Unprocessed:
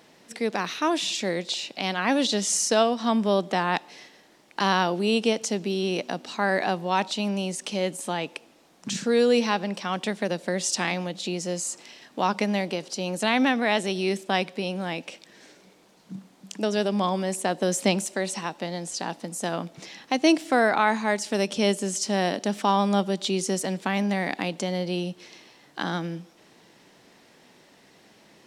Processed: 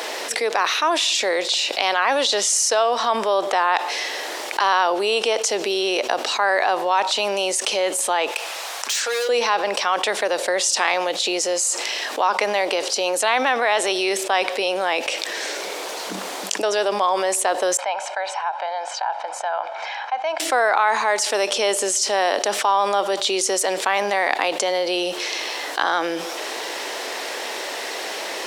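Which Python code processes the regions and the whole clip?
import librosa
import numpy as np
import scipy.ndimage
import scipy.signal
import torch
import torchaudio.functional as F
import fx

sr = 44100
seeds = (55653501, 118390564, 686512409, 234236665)

y = fx.chain(x, sr, fx.highpass(hz=860.0, slope=12),
    fx.overload_stage(gain_db=32.0), at=(8.31, 9.29))
y = fx.chain(y, sr, fx.ladder_bandpass(hz=1100.0, resonance_pct=40),
    fx.comb(ms=1.3, depth=0.64), at=(17.77, 20.4))
y = scipy.signal.sosfilt(scipy.signal.butter(4, 420.0, 'highpass', fs=sr, output='sos'), y)
y = fx.dynamic_eq(y, sr, hz=1100.0, q=1.1, threshold_db=-37.0, ratio=4.0, max_db=6)
y = fx.env_flatten(y, sr, amount_pct=70)
y = y * librosa.db_to_amplitude(-1.5)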